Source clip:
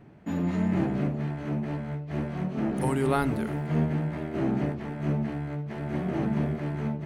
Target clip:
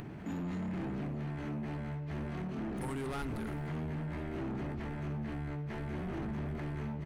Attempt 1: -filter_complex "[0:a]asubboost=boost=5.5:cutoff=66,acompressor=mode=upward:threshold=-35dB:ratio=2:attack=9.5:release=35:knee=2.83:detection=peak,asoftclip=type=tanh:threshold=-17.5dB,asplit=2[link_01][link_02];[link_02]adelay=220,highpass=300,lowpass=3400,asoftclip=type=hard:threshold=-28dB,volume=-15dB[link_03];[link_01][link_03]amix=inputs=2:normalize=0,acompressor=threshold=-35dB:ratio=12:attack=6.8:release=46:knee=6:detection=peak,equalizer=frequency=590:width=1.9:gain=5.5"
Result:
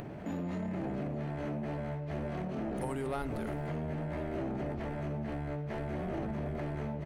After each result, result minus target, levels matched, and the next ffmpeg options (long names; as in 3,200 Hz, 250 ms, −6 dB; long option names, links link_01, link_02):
soft clipping: distortion −12 dB; 500 Hz band +4.0 dB
-filter_complex "[0:a]asubboost=boost=5.5:cutoff=66,acompressor=mode=upward:threshold=-35dB:ratio=2:attack=9.5:release=35:knee=2.83:detection=peak,asoftclip=type=tanh:threshold=-28dB,asplit=2[link_01][link_02];[link_02]adelay=220,highpass=300,lowpass=3400,asoftclip=type=hard:threshold=-28dB,volume=-15dB[link_03];[link_01][link_03]amix=inputs=2:normalize=0,acompressor=threshold=-35dB:ratio=12:attack=6.8:release=46:knee=6:detection=peak,equalizer=frequency=590:width=1.9:gain=5.5"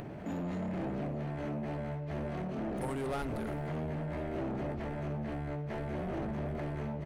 500 Hz band +4.0 dB
-filter_complex "[0:a]asubboost=boost=5.5:cutoff=66,acompressor=mode=upward:threshold=-35dB:ratio=2:attack=9.5:release=35:knee=2.83:detection=peak,asoftclip=type=tanh:threshold=-28dB,asplit=2[link_01][link_02];[link_02]adelay=220,highpass=300,lowpass=3400,asoftclip=type=hard:threshold=-28dB,volume=-15dB[link_03];[link_01][link_03]amix=inputs=2:normalize=0,acompressor=threshold=-35dB:ratio=12:attack=6.8:release=46:knee=6:detection=peak,equalizer=frequency=590:width=1.9:gain=-4.5"